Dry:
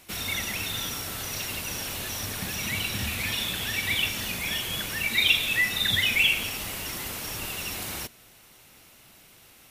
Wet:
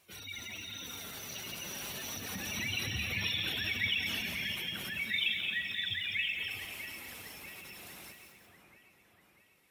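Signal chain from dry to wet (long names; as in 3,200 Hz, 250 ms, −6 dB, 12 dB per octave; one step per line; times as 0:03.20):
source passing by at 0:03.17, 12 m/s, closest 15 metres
high-pass filter 56 Hz
low-shelf EQ 110 Hz −4 dB
gate on every frequency bin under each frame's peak −15 dB strong
flanger 0.32 Hz, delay 1.7 ms, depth 4.1 ms, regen −40%
on a send: echo with a time of its own for lows and highs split 2,300 Hz, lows 643 ms, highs 172 ms, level −8.5 dB
on the sum: feedback echo at a low word length 218 ms, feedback 35%, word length 9 bits, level −7 dB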